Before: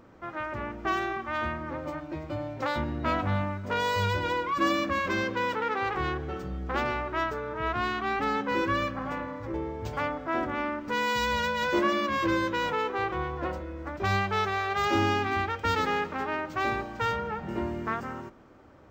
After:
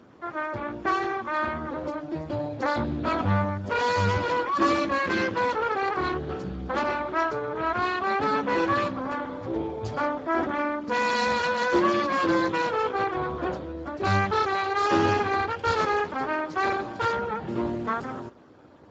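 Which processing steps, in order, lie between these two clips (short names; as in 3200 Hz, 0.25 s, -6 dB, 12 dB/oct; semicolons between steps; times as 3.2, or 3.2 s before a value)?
2.84–3.41 bell 1100 Hz -7 dB -> +4.5 dB 0.79 oct; gain +4 dB; Speex 8 kbps 16000 Hz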